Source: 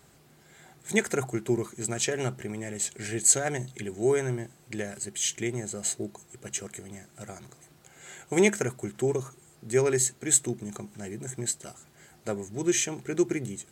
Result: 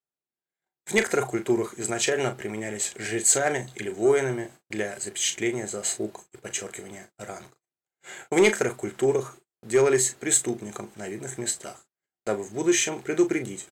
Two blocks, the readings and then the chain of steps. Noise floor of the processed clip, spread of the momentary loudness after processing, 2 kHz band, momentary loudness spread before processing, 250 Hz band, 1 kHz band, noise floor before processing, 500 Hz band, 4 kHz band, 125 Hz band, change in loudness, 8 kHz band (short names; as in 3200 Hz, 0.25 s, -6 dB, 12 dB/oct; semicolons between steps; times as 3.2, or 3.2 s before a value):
under -85 dBFS, 19 LU, +5.0 dB, 19 LU, +2.5 dB, +6.0 dB, -58 dBFS, +4.5 dB, +4.5 dB, -3.0 dB, +3.0 dB, +1.0 dB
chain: gate -47 dBFS, range -45 dB; tone controls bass -10 dB, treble -5 dB; in parallel at -6 dB: sine folder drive 7 dB, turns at -9 dBFS; on the sum: doubler 37 ms -10 dB; gain -2.5 dB